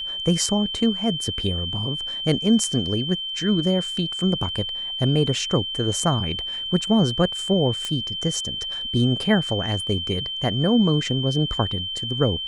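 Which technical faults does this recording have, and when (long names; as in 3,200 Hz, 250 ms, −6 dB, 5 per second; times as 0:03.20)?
whistle 3,100 Hz −27 dBFS
0:07.85: click −13 dBFS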